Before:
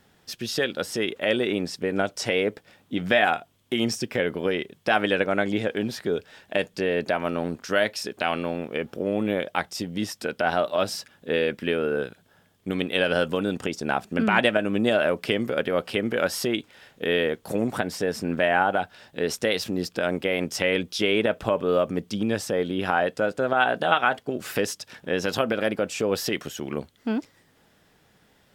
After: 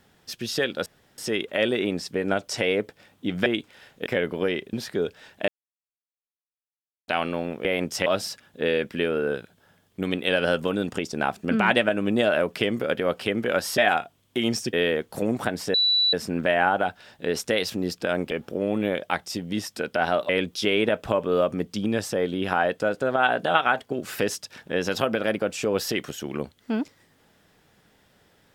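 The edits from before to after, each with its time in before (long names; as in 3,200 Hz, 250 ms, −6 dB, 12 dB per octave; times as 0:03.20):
0:00.86: splice in room tone 0.32 s
0:03.14–0:04.09: swap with 0:16.46–0:17.06
0:04.76–0:05.84: remove
0:06.59–0:08.19: silence
0:08.76–0:10.74: swap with 0:20.25–0:20.66
0:18.07: insert tone 3,950 Hz −17.5 dBFS 0.39 s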